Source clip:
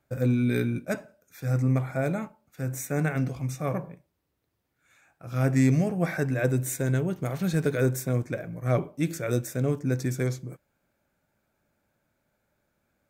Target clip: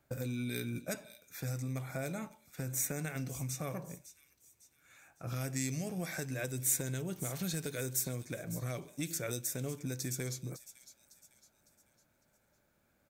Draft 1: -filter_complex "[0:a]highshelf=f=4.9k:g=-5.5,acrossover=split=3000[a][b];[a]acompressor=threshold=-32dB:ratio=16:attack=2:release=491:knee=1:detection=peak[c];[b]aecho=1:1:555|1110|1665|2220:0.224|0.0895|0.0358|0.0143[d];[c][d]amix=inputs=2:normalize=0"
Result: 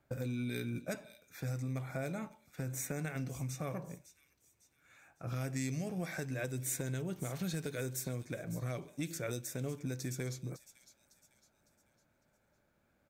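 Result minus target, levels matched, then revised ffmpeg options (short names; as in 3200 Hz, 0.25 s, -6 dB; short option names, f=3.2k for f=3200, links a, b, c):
8000 Hz band -4.5 dB
-filter_complex "[0:a]highshelf=f=4.9k:g=3.5,acrossover=split=3000[a][b];[a]acompressor=threshold=-32dB:ratio=16:attack=2:release=491:knee=1:detection=peak[c];[b]aecho=1:1:555|1110|1665|2220:0.224|0.0895|0.0358|0.0143[d];[c][d]amix=inputs=2:normalize=0"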